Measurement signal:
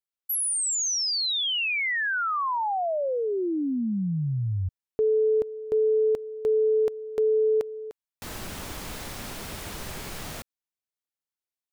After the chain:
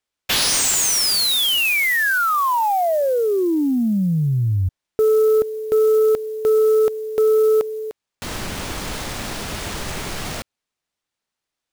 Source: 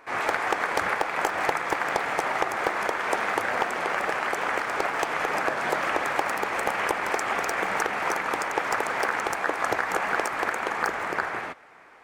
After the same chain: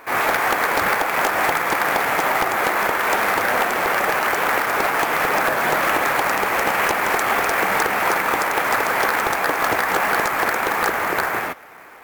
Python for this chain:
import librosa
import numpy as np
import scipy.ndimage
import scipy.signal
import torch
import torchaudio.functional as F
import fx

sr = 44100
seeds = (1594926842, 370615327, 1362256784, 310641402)

y = fx.fold_sine(x, sr, drive_db=4, ceiling_db=-13.0)
y = fx.sample_hold(y, sr, seeds[0], rate_hz=15000.0, jitter_pct=20)
y = F.gain(torch.from_numpy(y), 1.0).numpy()